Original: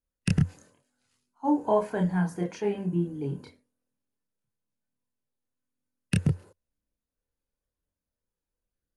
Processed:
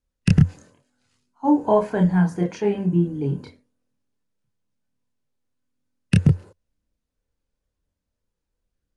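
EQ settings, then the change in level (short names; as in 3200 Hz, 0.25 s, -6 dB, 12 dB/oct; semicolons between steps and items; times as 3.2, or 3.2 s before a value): LPF 8000 Hz 12 dB/oct; low shelf 240 Hz +5 dB; +5.0 dB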